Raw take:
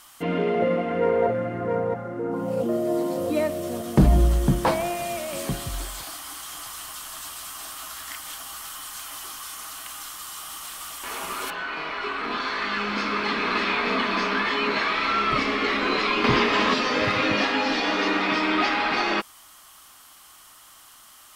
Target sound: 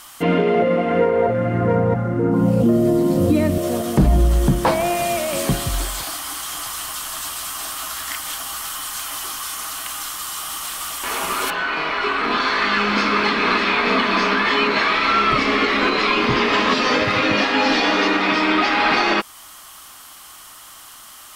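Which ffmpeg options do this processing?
-filter_complex "[0:a]asettb=1/sr,asplit=3[a][b][c];[a]atrim=end=1.104[d];[b]atrim=start=1.1:end=3.58,asetpts=PTS-STARTPTS,afade=t=in:d=0.004:c=qsin,afade=t=out:st=2.476:d=0.004:c=qsin,asubboost=boost=9:cutoff=240[e];[c]atrim=start=3.576[f];[d][e]acrossfade=d=0.004:c1=hsin:c2=qsin[g];[g][f]acrossfade=d=0.004:c1=qsin:c2=hsin,alimiter=limit=-16dB:level=0:latency=1:release=304,volume=8.5dB"

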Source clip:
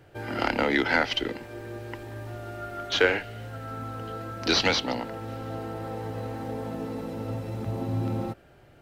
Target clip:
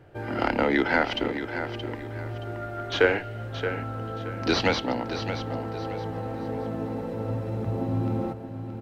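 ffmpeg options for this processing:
-af "highshelf=f=2.7k:g=-11,aecho=1:1:624|1248|1872:0.335|0.104|0.0322,volume=2.5dB"

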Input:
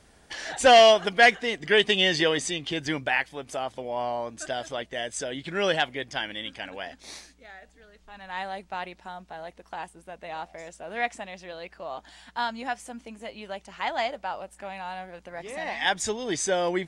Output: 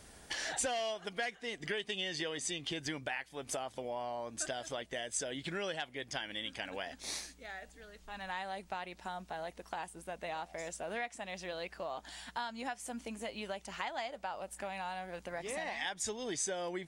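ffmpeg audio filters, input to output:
-af "acompressor=threshold=-37dB:ratio=6,crystalizer=i=1:c=0"

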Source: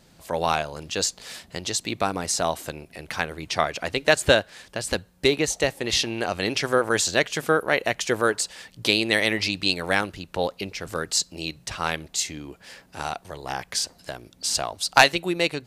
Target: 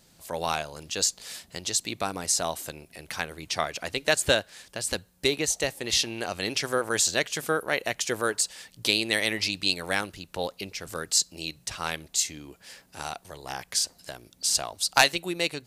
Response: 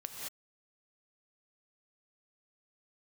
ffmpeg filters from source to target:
-af "highshelf=f=4.5k:g=10,volume=-6dB"

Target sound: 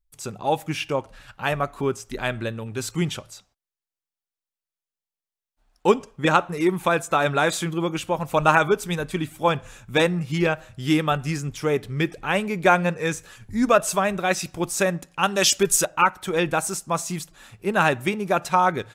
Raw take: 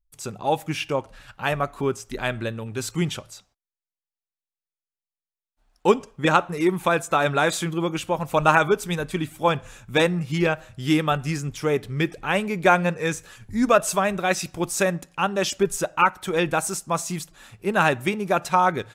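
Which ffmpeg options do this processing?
-filter_complex "[0:a]asettb=1/sr,asplit=3[a][b][c];[a]atrim=end=15.234[d];[b]atrim=start=15.23:end=15.85,asetpts=PTS-STARTPTS,afade=t=in:d=0.004:c=qsin,afade=t=out:st=0.616:d=0.004:c=qsin,highshelf=f=2.3k:g=11.5[e];[c]atrim=start=15.846[f];[d][e]acrossfade=d=0.004:c1=hsin:c2=qsin[g];[g][f]acrossfade=d=0.004:c1=qsin:c2=hsin"

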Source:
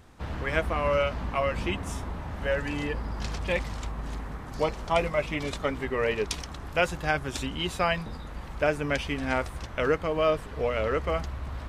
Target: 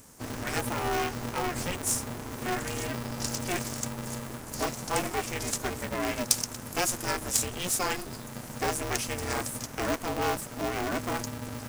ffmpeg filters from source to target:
-af "asoftclip=type=tanh:threshold=-17.5dB,aexciter=amount=9.4:drive=4.4:freq=5.2k,aeval=exprs='val(0)*sgn(sin(2*PI*180*n/s))':c=same,volume=-3dB"

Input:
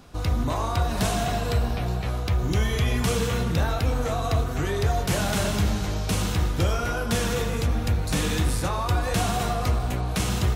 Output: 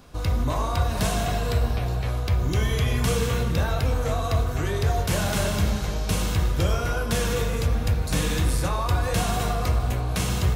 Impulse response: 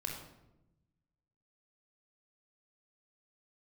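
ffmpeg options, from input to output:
-filter_complex "[0:a]asplit=2[a][b];[1:a]atrim=start_sample=2205,highshelf=f=11k:g=10.5[c];[b][c]afir=irnorm=-1:irlink=0,volume=-6.5dB[d];[a][d]amix=inputs=2:normalize=0,volume=-3dB"

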